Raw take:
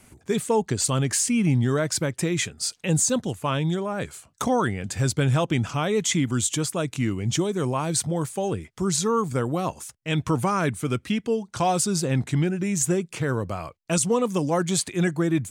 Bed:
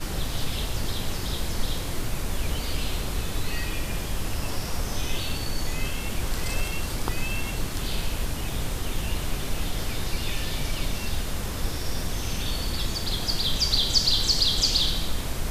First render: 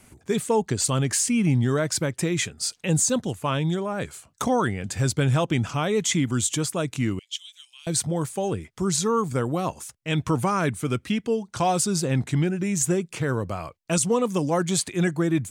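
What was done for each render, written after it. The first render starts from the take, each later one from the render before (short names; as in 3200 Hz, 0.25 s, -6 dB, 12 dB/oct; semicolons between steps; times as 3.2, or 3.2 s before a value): 7.19–7.87 ladder high-pass 2900 Hz, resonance 70%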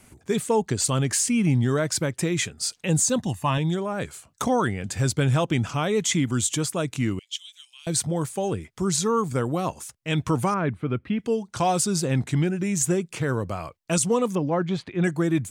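3.18–3.58 comb 1.1 ms; 10.54–11.19 air absorption 450 m; 14.35–15.04 air absorption 320 m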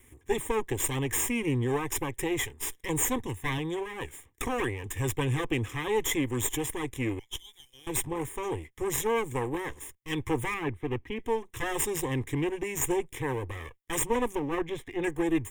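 minimum comb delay 0.57 ms; fixed phaser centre 940 Hz, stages 8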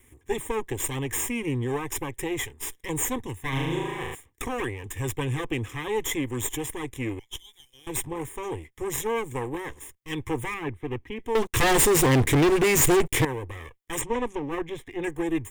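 3.49–4.15 flutter echo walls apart 6.4 m, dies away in 1.2 s; 11.35–13.25 sample leveller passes 5; 14.01–14.48 LPF 6300 Hz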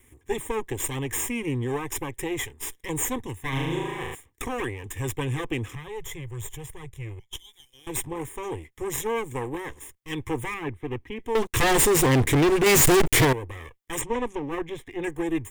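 5.75–7.33 EQ curve 170 Hz 0 dB, 250 Hz -27 dB, 370 Hz -9 dB; 12.66–13.33 sample leveller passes 5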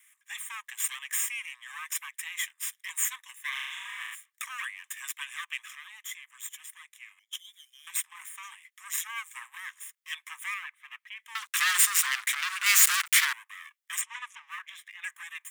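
steep high-pass 1200 Hz 48 dB/oct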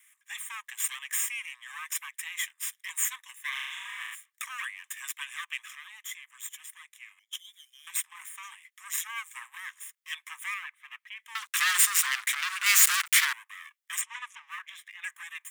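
nothing audible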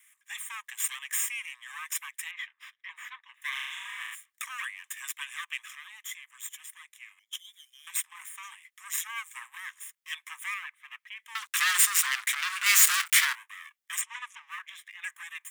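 2.31–3.42 air absorption 340 m; 12.42–13.59 doubler 24 ms -12.5 dB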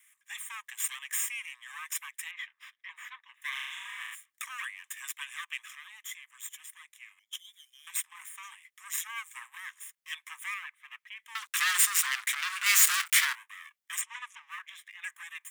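gain -2 dB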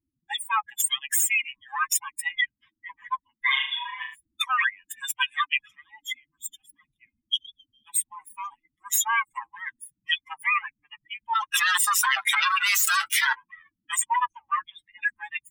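per-bin expansion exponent 3; fast leveller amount 100%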